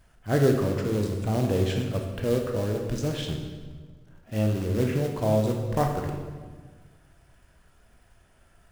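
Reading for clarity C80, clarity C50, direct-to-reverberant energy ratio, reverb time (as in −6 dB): 6.5 dB, 4.5 dB, 2.0 dB, 1.5 s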